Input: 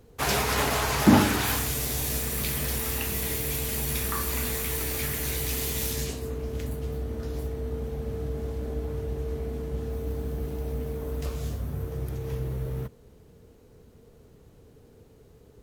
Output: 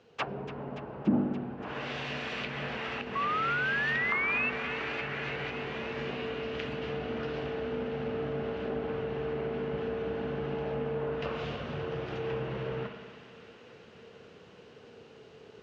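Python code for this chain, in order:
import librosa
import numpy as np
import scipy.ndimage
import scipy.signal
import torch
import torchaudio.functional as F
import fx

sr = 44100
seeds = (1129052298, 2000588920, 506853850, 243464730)

p1 = fx.rider(x, sr, range_db=4, speed_s=2.0)
p2 = fx.cabinet(p1, sr, low_hz=240.0, low_slope=12, high_hz=5500.0, hz=(280.0, 410.0, 1500.0, 2800.0), db=(-7, -3, 4, 9))
p3 = fx.rev_spring(p2, sr, rt60_s=1.6, pass_ms=(57,), chirp_ms=65, drr_db=5.5)
p4 = fx.env_lowpass_down(p3, sr, base_hz=340.0, full_db=-25.5)
p5 = fx.spec_paint(p4, sr, seeds[0], shape='rise', start_s=3.15, length_s=1.35, low_hz=1100.0, high_hz=2700.0, level_db=-32.0)
p6 = p5 + fx.echo_wet_highpass(p5, sr, ms=287, feedback_pct=80, hz=1400.0, wet_db=-12.5, dry=0)
y = p6 * 10.0 ** (1.5 / 20.0)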